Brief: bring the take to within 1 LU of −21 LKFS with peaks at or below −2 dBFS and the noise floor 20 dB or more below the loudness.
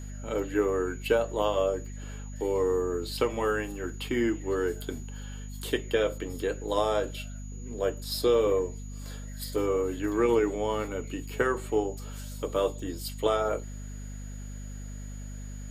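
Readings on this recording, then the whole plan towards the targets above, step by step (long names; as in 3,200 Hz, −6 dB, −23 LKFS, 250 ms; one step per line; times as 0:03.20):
mains hum 50 Hz; hum harmonics up to 250 Hz; level of the hum −37 dBFS; interfering tone 6,800 Hz; level of the tone −51 dBFS; integrated loudness −29.5 LKFS; sample peak −11.0 dBFS; target loudness −21.0 LKFS
→ mains-hum notches 50/100/150/200/250 Hz
notch filter 6,800 Hz, Q 30
level +8.5 dB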